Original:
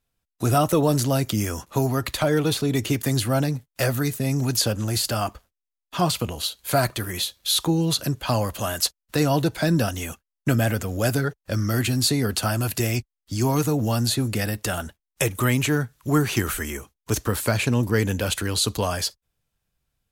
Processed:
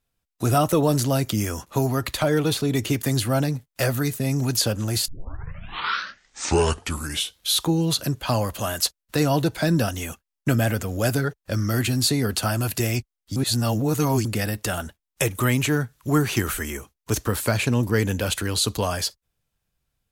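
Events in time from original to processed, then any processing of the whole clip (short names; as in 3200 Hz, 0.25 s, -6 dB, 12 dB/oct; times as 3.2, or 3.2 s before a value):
5.08 tape start 2.47 s
13.36–14.25 reverse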